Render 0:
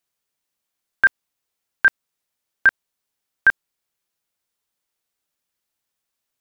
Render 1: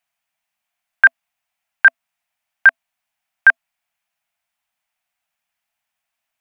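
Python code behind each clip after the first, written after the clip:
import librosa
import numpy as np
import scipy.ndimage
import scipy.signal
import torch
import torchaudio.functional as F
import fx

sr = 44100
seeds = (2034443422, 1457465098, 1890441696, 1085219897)

y = fx.curve_eq(x, sr, hz=(250.0, 420.0, 670.0, 1100.0, 2500.0, 4000.0), db=(0, -26, 12, 6, 11, 1))
y = y * librosa.db_to_amplitude(-3.0)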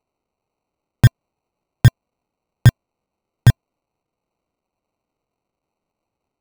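y = fx.sample_hold(x, sr, seeds[0], rate_hz=1700.0, jitter_pct=0)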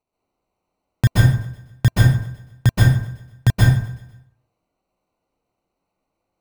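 y = fx.echo_feedback(x, sr, ms=125, feedback_pct=51, wet_db=-20.0)
y = fx.rev_plate(y, sr, seeds[1], rt60_s=0.63, hf_ratio=0.65, predelay_ms=115, drr_db=-7.0)
y = y * librosa.db_to_amplitude(-5.0)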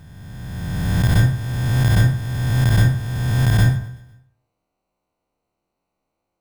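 y = fx.spec_swells(x, sr, rise_s=2.18)
y = y * librosa.db_to_amplitude(-4.5)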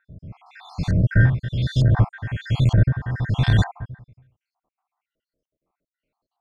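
y = fx.spec_dropout(x, sr, seeds[2], share_pct=63)
y = fx.filter_lfo_lowpass(y, sr, shape='saw_up', hz=1.1, low_hz=840.0, high_hz=5300.0, q=1.9)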